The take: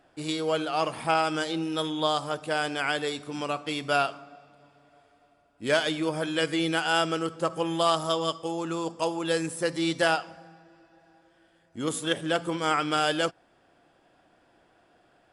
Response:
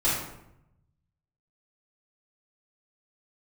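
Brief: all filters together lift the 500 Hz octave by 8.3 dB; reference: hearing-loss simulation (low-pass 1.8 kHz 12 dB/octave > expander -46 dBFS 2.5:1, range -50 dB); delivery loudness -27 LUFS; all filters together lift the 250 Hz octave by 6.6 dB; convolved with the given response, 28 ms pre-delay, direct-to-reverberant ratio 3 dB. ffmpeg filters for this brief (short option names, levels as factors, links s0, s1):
-filter_complex "[0:a]equalizer=f=250:t=o:g=5,equalizer=f=500:t=o:g=9,asplit=2[s0][s1];[1:a]atrim=start_sample=2205,adelay=28[s2];[s1][s2]afir=irnorm=-1:irlink=0,volume=0.168[s3];[s0][s3]amix=inputs=2:normalize=0,lowpass=1800,agate=range=0.00316:threshold=0.00501:ratio=2.5,volume=0.473"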